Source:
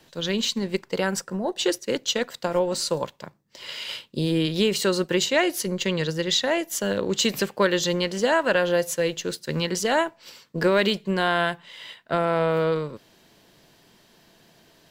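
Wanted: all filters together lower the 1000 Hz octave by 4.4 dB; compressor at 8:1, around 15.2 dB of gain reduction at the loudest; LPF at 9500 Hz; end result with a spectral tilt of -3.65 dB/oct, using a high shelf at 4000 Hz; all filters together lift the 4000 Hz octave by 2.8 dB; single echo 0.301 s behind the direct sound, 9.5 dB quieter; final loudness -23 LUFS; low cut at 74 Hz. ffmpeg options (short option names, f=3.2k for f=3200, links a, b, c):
-af "highpass=74,lowpass=9.5k,equalizer=f=1k:t=o:g=-6,highshelf=f=4k:g=-5.5,equalizer=f=4k:t=o:g=7,acompressor=threshold=-33dB:ratio=8,aecho=1:1:301:0.335,volume=13dB"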